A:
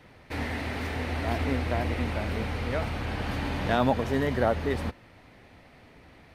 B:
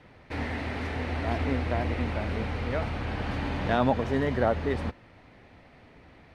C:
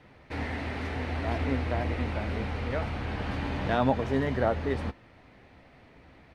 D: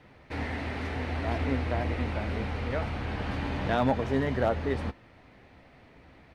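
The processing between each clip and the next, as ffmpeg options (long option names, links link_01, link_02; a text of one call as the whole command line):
ffmpeg -i in.wav -af "lowpass=9100,highshelf=frequency=4500:gain=-7" out.wav
ffmpeg -i in.wav -filter_complex "[0:a]asplit=2[link_01][link_02];[link_02]adelay=15,volume=-12dB[link_03];[link_01][link_03]amix=inputs=2:normalize=0,volume=-1.5dB" out.wav
ffmpeg -i in.wav -af "volume=15.5dB,asoftclip=hard,volume=-15.5dB" out.wav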